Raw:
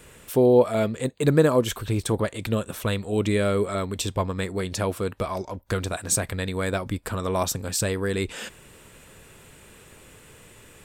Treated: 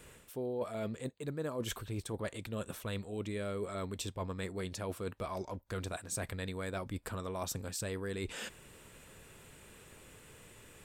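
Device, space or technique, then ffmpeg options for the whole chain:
compression on the reversed sound: -af "areverse,acompressor=threshold=-29dB:ratio=6,areverse,volume=-6.5dB"

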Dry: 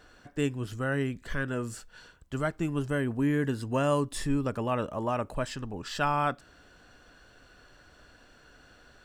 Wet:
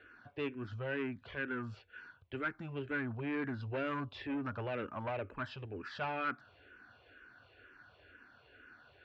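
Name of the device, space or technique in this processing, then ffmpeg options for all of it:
barber-pole phaser into a guitar amplifier: -filter_complex "[0:a]asplit=2[a][b];[b]afreqshift=-2.1[c];[a][c]amix=inputs=2:normalize=1,asoftclip=type=tanh:threshold=-29.5dB,highpass=84,equalizer=f=96:t=q:w=4:g=7,equalizer=f=170:t=q:w=4:g=-9,equalizer=f=380:t=q:w=4:g=3,equalizer=f=1.5k:t=q:w=4:g=7,equalizer=f=2.4k:t=q:w=4:g=7,lowpass=f=3.7k:w=0.5412,lowpass=f=3.7k:w=1.3066,volume=-3.5dB"

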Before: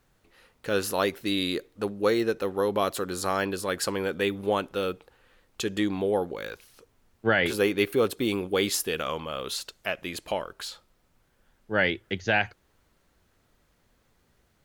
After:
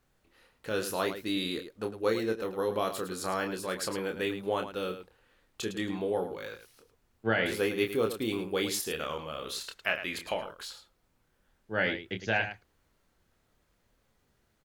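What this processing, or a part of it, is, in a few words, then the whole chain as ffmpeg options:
slapback doubling: -filter_complex "[0:a]asettb=1/sr,asplit=3[a][b][c];[a]atrim=end=9.614[d];[b]atrim=start=9.61:end=10.34,asetpts=PTS-STARTPTS,afade=t=in:d=0.004:c=qsin,afade=t=out:st=0.726:d=0.004:c=qsin,equalizer=f=1.8k:w=0.67:g=8.5[e];[c]atrim=start=10.336[f];[d][e]acrossfade=d=0.004:c1=hsin:c2=qsin[g];[g][f]acrossfade=d=0.004:c1=qsin:c2=hsin,asplit=3[h][i][j];[i]adelay=27,volume=-6dB[k];[j]adelay=107,volume=-10.5dB[l];[h][k][l]amix=inputs=3:normalize=0,volume=-6dB"

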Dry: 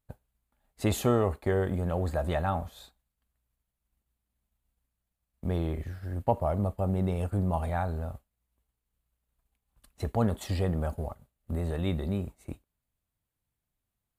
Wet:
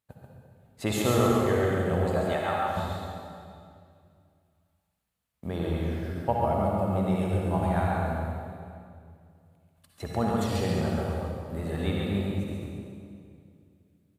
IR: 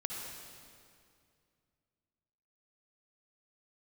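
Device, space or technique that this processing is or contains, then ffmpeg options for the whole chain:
PA in a hall: -filter_complex "[0:a]highpass=100,equalizer=f=2.8k:t=o:w=2.8:g=4,aecho=1:1:138:0.631[a];[1:a]atrim=start_sample=2205[b];[a][b]afir=irnorm=-1:irlink=0,asettb=1/sr,asplit=3[c][d][e];[c]atrim=end=2.334[f];[d]atrim=start=2.33:end=2.77,asetpts=PTS-STARTPTS,afade=t=in:d=0.004:c=qsin,afade=t=out:st=0.436:d=0.004:c=qsin,lowshelf=f=230:g=-11.5[g];[e]atrim=start=2.766[h];[f][g]acrossfade=d=0.004:c1=hsin:c2=qsin[i];[i][h]acrossfade=d=0.004:c1=qsin:c2=hsin"

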